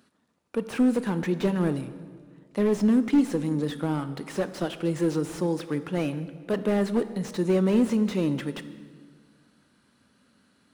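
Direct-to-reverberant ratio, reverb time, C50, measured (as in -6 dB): 11.5 dB, 1.7 s, 13.0 dB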